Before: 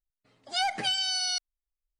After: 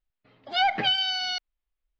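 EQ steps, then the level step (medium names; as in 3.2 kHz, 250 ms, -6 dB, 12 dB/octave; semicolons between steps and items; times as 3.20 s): low-pass 3.6 kHz 24 dB/octave; +6.0 dB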